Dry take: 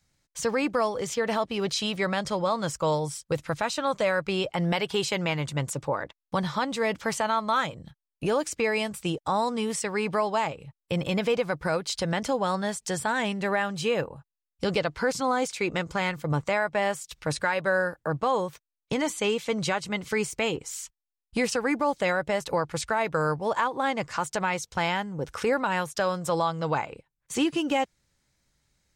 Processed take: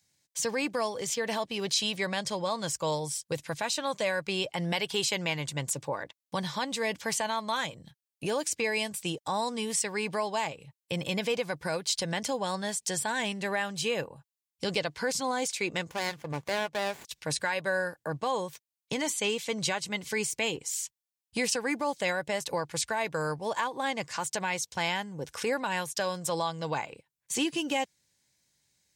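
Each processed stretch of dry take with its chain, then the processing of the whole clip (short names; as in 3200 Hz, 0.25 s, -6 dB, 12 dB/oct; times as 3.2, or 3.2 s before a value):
15.89–17.05 LPF 8300 Hz + low shelf 340 Hz -5 dB + running maximum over 9 samples
whole clip: HPF 94 Hz; high shelf 2600 Hz +10 dB; notch 1300 Hz, Q 5.4; gain -5.5 dB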